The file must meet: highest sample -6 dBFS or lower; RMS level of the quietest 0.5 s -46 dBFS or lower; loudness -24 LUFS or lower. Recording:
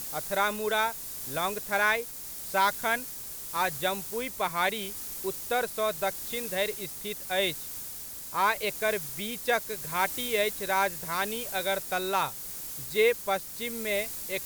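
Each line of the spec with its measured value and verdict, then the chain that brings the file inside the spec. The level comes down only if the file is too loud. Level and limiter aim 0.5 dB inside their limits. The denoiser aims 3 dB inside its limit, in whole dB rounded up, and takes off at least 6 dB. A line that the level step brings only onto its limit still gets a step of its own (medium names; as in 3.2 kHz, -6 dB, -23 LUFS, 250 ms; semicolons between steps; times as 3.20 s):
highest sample -12.5 dBFS: pass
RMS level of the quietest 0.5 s -40 dBFS: fail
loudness -29.5 LUFS: pass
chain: noise reduction 9 dB, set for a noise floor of -40 dBFS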